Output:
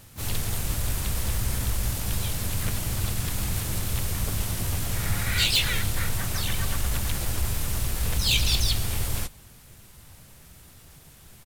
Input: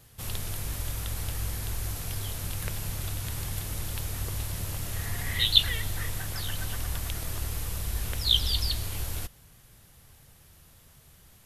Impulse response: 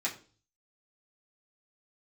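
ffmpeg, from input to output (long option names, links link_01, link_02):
-filter_complex "[0:a]volume=23.5dB,asoftclip=hard,volume=-23.5dB,asplit=4[link_01][link_02][link_03][link_04];[link_02]asetrate=33038,aresample=44100,atempo=1.33484,volume=-2dB[link_05];[link_03]asetrate=52444,aresample=44100,atempo=0.840896,volume=-2dB[link_06];[link_04]asetrate=88200,aresample=44100,atempo=0.5,volume=-9dB[link_07];[link_01][link_05][link_06][link_07]amix=inputs=4:normalize=0,volume=2dB"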